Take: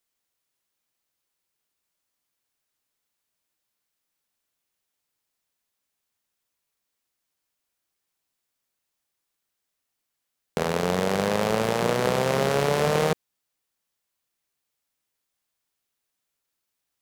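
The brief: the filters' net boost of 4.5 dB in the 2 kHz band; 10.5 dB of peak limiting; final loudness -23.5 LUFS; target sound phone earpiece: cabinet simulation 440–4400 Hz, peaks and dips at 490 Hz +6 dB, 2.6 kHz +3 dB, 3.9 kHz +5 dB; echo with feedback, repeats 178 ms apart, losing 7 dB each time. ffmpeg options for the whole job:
-af "equalizer=f=2000:t=o:g=4.5,alimiter=limit=0.158:level=0:latency=1,highpass=440,equalizer=f=490:t=q:w=4:g=6,equalizer=f=2600:t=q:w=4:g=3,equalizer=f=3900:t=q:w=4:g=5,lowpass=f=4400:w=0.5412,lowpass=f=4400:w=1.3066,aecho=1:1:178|356|534|712|890:0.447|0.201|0.0905|0.0407|0.0183,volume=1.88"

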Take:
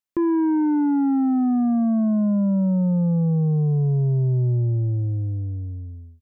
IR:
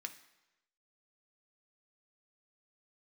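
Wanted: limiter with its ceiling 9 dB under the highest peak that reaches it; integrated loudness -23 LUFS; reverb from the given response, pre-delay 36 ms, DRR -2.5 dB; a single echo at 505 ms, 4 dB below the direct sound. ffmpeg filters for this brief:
-filter_complex "[0:a]alimiter=level_in=1.33:limit=0.0631:level=0:latency=1,volume=0.75,aecho=1:1:505:0.631,asplit=2[s0][s1];[1:a]atrim=start_sample=2205,adelay=36[s2];[s1][s2]afir=irnorm=-1:irlink=0,volume=1.78[s3];[s0][s3]amix=inputs=2:normalize=0,volume=1.41"

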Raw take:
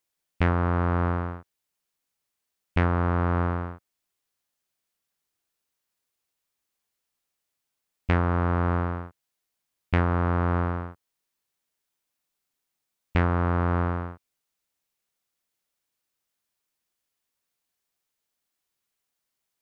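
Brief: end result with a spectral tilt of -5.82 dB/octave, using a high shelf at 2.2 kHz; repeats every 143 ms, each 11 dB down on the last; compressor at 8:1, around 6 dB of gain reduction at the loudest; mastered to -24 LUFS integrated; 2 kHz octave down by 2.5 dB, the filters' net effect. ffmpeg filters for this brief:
-af "equalizer=f=2000:t=o:g=-7,highshelf=f=2200:g=7,acompressor=threshold=0.0631:ratio=8,aecho=1:1:143|286|429:0.282|0.0789|0.0221,volume=2.24"

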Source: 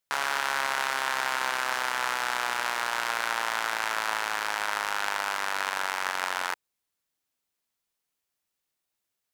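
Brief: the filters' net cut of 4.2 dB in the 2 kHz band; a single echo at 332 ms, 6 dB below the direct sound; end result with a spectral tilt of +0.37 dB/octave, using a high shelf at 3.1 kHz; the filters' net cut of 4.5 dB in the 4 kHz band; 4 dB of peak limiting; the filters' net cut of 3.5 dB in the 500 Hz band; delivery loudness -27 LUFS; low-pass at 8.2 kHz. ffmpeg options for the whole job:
-af "lowpass=8200,equalizer=f=500:t=o:g=-4.5,equalizer=f=2000:t=o:g=-5.5,highshelf=f=3100:g=6,equalizer=f=4000:t=o:g=-8.5,alimiter=limit=0.168:level=0:latency=1,aecho=1:1:332:0.501,volume=1.78"

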